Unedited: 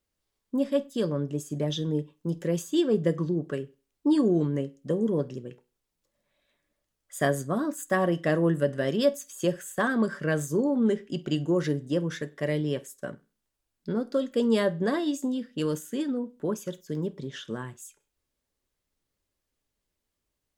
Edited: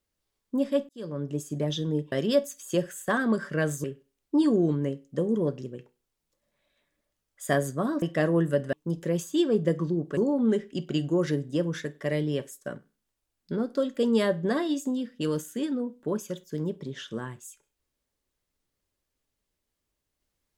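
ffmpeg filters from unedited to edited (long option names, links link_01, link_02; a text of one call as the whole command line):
ffmpeg -i in.wav -filter_complex "[0:a]asplit=7[link_01][link_02][link_03][link_04][link_05][link_06][link_07];[link_01]atrim=end=0.89,asetpts=PTS-STARTPTS,afade=type=out:start_time=0.886:duration=0.004:curve=hsin[link_08];[link_02]atrim=start=0.89:end=2.122,asetpts=PTS-STARTPTS,afade=type=in:duration=0.45[link_09];[link_03]atrim=start=8.818:end=10.542[link_10];[link_04]atrim=start=3.558:end=7.742[link_11];[link_05]atrim=start=8.108:end=8.822[link_12];[link_06]atrim=start=2.118:end=3.562[link_13];[link_07]atrim=start=10.538[link_14];[link_08][link_09]concat=n=2:v=0:a=1[link_15];[link_15][link_10]acrossfade=duration=0.004:curve1=hsin:curve2=hsin[link_16];[link_16][link_11]acrossfade=duration=0.004:curve1=hsin:curve2=hsin[link_17];[link_17][link_12]acrossfade=duration=0.004:curve1=hsin:curve2=hsin[link_18];[link_18][link_13]acrossfade=duration=0.004:curve1=hsin:curve2=hsin[link_19];[link_19][link_14]acrossfade=duration=0.004:curve1=hsin:curve2=hsin" out.wav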